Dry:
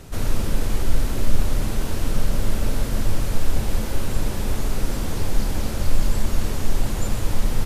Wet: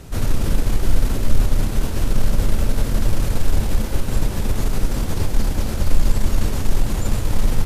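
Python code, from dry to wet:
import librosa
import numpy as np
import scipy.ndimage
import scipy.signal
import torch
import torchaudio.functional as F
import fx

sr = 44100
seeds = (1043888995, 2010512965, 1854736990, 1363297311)

y = fx.low_shelf(x, sr, hz=230.0, db=3.5)
y = fx.cheby_harmonics(y, sr, harmonics=(8,), levels_db=(-29,), full_scale_db=0.5)
y = y * 10.0 ** (1.0 / 20.0)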